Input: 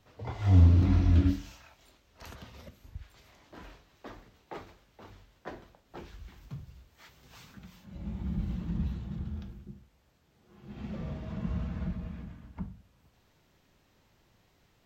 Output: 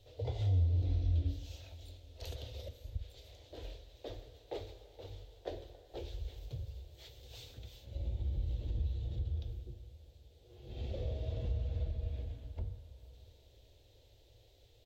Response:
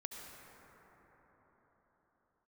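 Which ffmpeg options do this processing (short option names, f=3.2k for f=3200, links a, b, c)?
-filter_complex "[0:a]firequalizer=gain_entry='entry(110,0);entry(170,-29);entry(270,-12);entry(490,1);entry(1100,-25);entry(3600,0);entry(5300,-8)':delay=0.05:min_phase=1,acompressor=threshold=-40dB:ratio=3,asplit=2[a][b];[1:a]atrim=start_sample=2205,lowshelf=f=490:g=-7[c];[b][c]afir=irnorm=-1:irlink=0,volume=-4.5dB[d];[a][d]amix=inputs=2:normalize=0,volume=5dB"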